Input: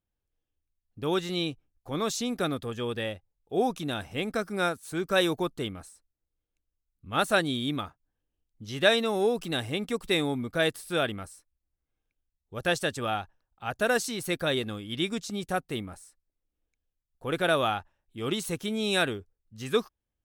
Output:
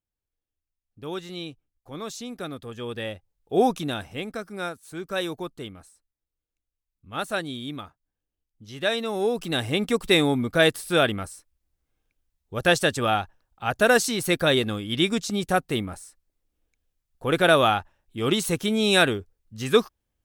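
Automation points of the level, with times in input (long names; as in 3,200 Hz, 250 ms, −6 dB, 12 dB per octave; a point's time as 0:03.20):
0:02.47 −5.5 dB
0:03.65 +6.5 dB
0:04.40 −4 dB
0:08.79 −4 dB
0:09.81 +7 dB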